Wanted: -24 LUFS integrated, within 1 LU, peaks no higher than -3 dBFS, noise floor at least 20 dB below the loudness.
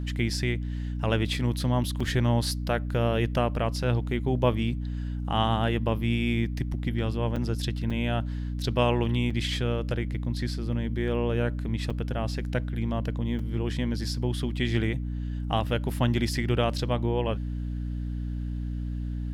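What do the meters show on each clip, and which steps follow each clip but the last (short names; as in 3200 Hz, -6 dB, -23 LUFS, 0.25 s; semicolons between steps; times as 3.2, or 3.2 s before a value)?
dropouts 6; longest dropout 4.7 ms; hum 60 Hz; harmonics up to 300 Hz; hum level -29 dBFS; loudness -28.5 LUFS; peak -9.5 dBFS; loudness target -24.0 LUFS
-> interpolate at 2/7.36/7.9/9.3/11.9/13.39, 4.7 ms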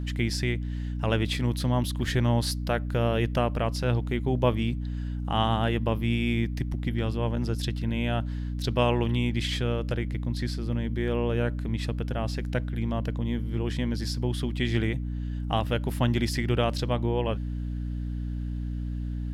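dropouts 0; hum 60 Hz; harmonics up to 300 Hz; hum level -29 dBFS
-> de-hum 60 Hz, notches 5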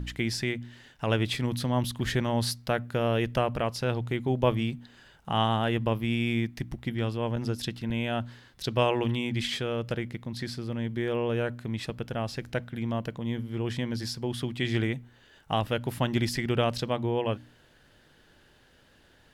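hum none; loudness -30.0 LUFS; peak -9.5 dBFS; loudness target -24.0 LUFS
-> gain +6 dB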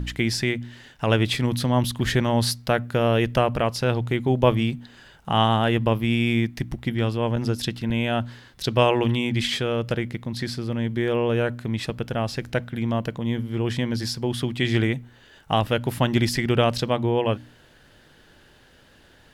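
loudness -24.0 LUFS; peak -3.5 dBFS; noise floor -54 dBFS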